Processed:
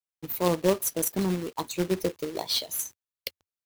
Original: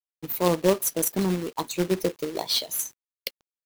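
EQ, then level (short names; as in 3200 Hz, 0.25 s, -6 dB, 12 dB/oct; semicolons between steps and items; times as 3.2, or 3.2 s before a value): bell 86 Hz +7.5 dB 0.6 oct; -2.5 dB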